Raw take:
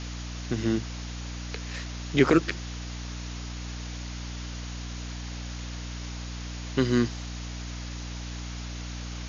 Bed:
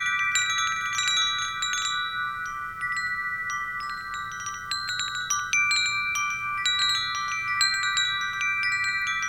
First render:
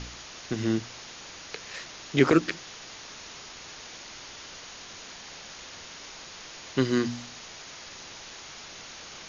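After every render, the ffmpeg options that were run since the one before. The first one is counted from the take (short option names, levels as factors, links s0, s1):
-af "bandreject=f=60:t=h:w=4,bandreject=f=120:t=h:w=4,bandreject=f=180:t=h:w=4,bandreject=f=240:t=h:w=4,bandreject=f=300:t=h:w=4"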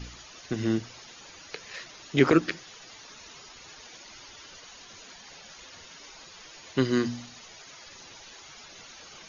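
-af "afftdn=nr=12:nf=-45"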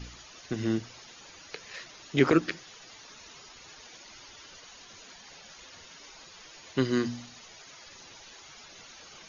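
-af "volume=0.794"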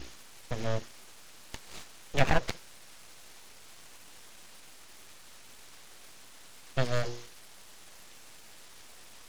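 -af "aeval=exprs='abs(val(0))':c=same"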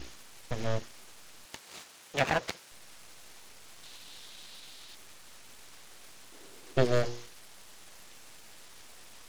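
-filter_complex "[0:a]asettb=1/sr,asplit=3[s0][s1][s2];[s0]atrim=end=1.454[s3];[s1]atrim=start=1.45:end=2.72,asetpts=PTS-STARTPTS,afade=t=in:d=0.004:c=qsin,afade=t=out:st=1.266:d=0.004:c=qsin,highpass=f=270:p=1[s4];[s2]atrim=start=2.716[s5];[s3][s4]acrossfade=d=0.004:c1=hsin:c2=qsin[s6];[s6][s5]acrossfade=d=0.004:c1=qsin:c2=hsin,asettb=1/sr,asplit=3[s7][s8][s9];[s7]atrim=end=3.834[s10];[s8]atrim=start=3.83:end=4.95,asetpts=PTS-STARTPTS,afade=t=in:d=0.004:c=qsin,afade=t=out:st=1.116:d=0.004:c=qsin,equalizer=f=3800:t=o:w=0.75:g=10.5[s11];[s9]atrim=start=4.946[s12];[s10][s11]acrossfade=d=0.004:c1=hsin:c2=qsin[s13];[s13][s12]acrossfade=d=0.004:c1=qsin:c2=hsin,asettb=1/sr,asplit=3[s14][s15][s16];[s14]atrim=end=6.324[s17];[s15]atrim=start=6.32:end=7.05,asetpts=PTS-STARTPTS,afade=t=in:d=0.004:c=qsin,afade=t=out:st=0.726:d=0.004:c=qsin,equalizer=f=370:t=o:w=0.89:g=14[s18];[s16]atrim=start=7.046[s19];[s17][s18]acrossfade=d=0.004:c1=hsin:c2=qsin[s20];[s20][s19]acrossfade=d=0.004:c1=qsin:c2=hsin"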